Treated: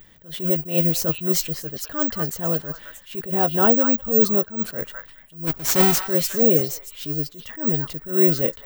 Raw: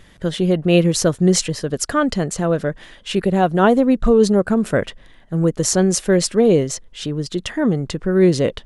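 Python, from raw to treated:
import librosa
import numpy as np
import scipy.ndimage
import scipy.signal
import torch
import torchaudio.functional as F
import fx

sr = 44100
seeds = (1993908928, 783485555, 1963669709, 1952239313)

p1 = fx.halfwave_hold(x, sr, at=(5.46, 6.0), fade=0.02)
p2 = fx.doubler(p1, sr, ms=13.0, db=-10)
p3 = p2 + fx.echo_stepped(p2, sr, ms=210, hz=1300.0, octaves=1.4, feedback_pct=70, wet_db=-5, dry=0)
p4 = (np.kron(p3[::2], np.eye(2)[0]) * 2)[:len(p3)]
p5 = fx.attack_slew(p4, sr, db_per_s=160.0)
y = F.gain(torch.from_numpy(p5), -6.5).numpy()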